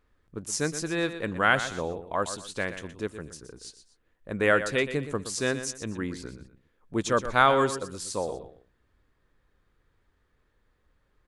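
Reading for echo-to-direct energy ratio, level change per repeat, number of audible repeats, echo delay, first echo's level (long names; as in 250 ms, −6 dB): −11.0 dB, −10.0 dB, 2, 121 ms, −11.5 dB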